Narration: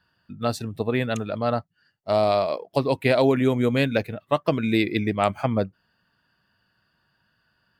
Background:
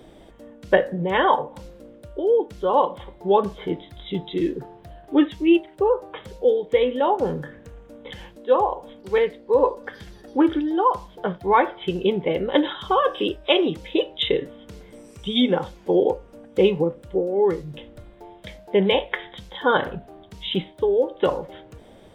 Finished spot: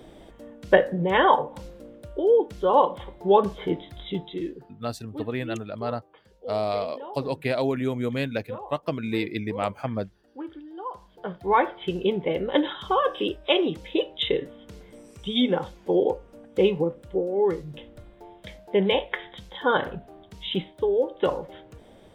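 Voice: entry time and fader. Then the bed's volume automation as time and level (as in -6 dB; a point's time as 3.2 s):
4.40 s, -6.0 dB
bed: 4.02 s 0 dB
4.96 s -19 dB
10.7 s -19 dB
11.52 s -3 dB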